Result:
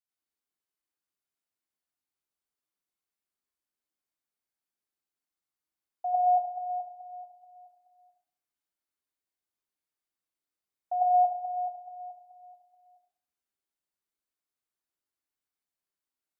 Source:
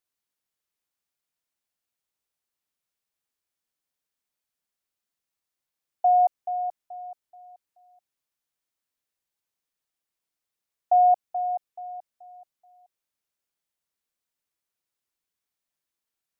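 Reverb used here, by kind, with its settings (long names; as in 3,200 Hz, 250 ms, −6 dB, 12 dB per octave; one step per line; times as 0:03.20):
dense smooth reverb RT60 0.54 s, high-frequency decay 0.5×, pre-delay 80 ms, DRR −6 dB
level −12 dB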